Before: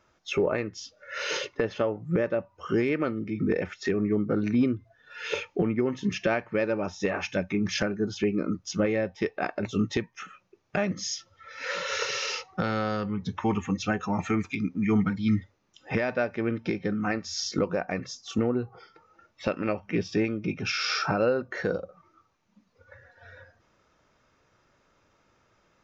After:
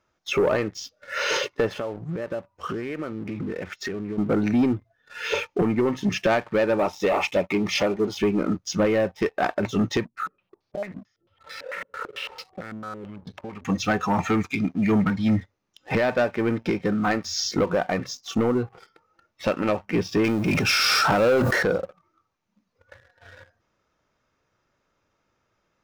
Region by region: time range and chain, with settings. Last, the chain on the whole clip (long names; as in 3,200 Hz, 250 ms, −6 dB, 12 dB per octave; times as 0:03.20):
0:01.70–0:04.18: downward compressor 8 to 1, threshold −32 dBFS + highs frequency-modulated by the lows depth 0.13 ms
0:06.79–0:08.19: bass and treble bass −11 dB, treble −7 dB + leveller curve on the samples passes 1 + Butterworth band-reject 1,600 Hz, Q 3.1
0:10.05–0:13.65: downward compressor 8 to 1, threshold −40 dBFS + low-pass on a step sequencer 9 Hz 250–4,600 Hz
0:20.24–0:21.63: mu-law and A-law mismatch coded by mu + high-shelf EQ 3,900 Hz +6 dB + level that may fall only so fast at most 27 dB per second
whole clip: dynamic equaliser 900 Hz, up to +5 dB, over −40 dBFS, Q 0.93; leveller curve on the samples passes 2; level −2.5 dB